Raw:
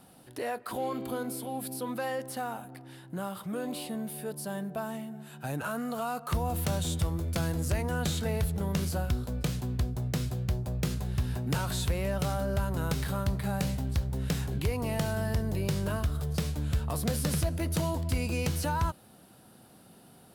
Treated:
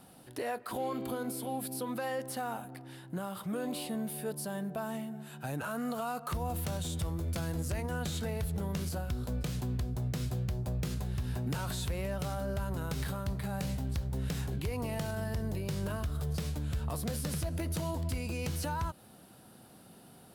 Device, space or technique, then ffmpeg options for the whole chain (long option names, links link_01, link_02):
clipper into limiter: -af "asoftclip=type=hard:threshold=-20dB,alimiter=level_in=2.5dB:limit=-24dB:level=0:latency=1:release=128,volume=-2.5dB"